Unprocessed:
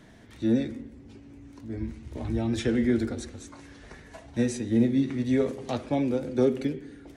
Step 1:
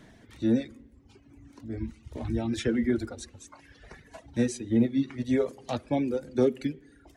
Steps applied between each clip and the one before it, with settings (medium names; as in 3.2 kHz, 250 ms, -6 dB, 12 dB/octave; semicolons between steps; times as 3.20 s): reverb removal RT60 1.4 s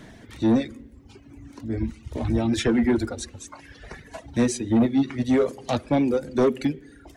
saturation -21.5 dBFS, distortion -12 dB; trim +8 dB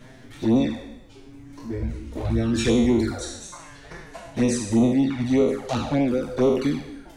spectral sustain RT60 0.92 s; added noise brown -49 dBFS; touch-sensitive flanger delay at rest 9.3 ms, full sweep at -15 dBFS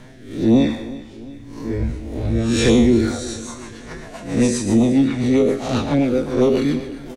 reverse spectral sustain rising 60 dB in 0.54 s; rotary cabinet horn 1 Hz, later 7.5 Hz, at 2.67 s; feedback delay 349 ms, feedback 51%, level -18 dB; trim +5 dB